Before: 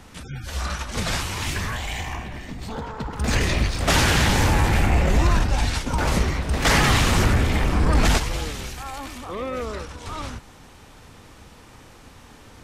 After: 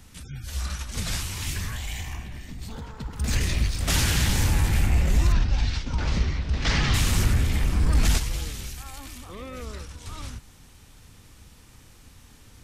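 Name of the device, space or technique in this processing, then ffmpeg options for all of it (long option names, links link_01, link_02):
smiley-face EQ: -filter_complex "[0:a]lowshelf=frequency=130:gain=4,equalizer=frequency=690:width_type=o:width=2.8:gain=-8.5,highshelf=frequency=8300:gain=8,asettb=1/sr,asplit=3[link_01][link_02][link_03];[link_01]atrim=end=5.324[link_04];[link_02]atrim=start=5.32:end=6.94,asetpts=PTS-STARTPTS,afade=type=in:duration=0.004:curve=qsin,afade=type=out:start_time=1.616:duration=0.004:curve=qsin,lowpass=frequency=5400:width=0.5412,lowpass=frequency=5400:width=1.3066[link_05];[link_03]atrim=start=6.936[link_06];[link_04][link_05]acrossfade=duration=0.004:curve1=hsin:curve2=qsin[link_07];[link_07][link_06]acrossfade=duration=0.004:curve1=qsin:curve2=hsin,volume=-4dB"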